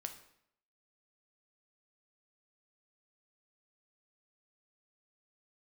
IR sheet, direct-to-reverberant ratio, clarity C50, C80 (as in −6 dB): 5.5 dB, 10.5 dB, 13.0 dB